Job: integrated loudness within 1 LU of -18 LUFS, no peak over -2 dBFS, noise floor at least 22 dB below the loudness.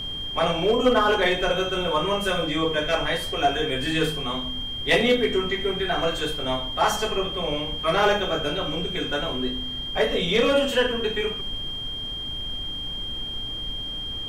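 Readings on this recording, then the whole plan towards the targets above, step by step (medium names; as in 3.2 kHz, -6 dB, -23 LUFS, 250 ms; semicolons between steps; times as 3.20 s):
steady tone 3.2 kHz; tone level -30 dBFS; noise floor -32 dBFS; noise floor target -46 dBFS; loudness -24.0 LUFS; peak level -8.5 dBFS; loudness target -18.0 LUFS
-> band-stop 3.2 kHz, Q 30; noise print and reduce 14 dB; trim +6 dB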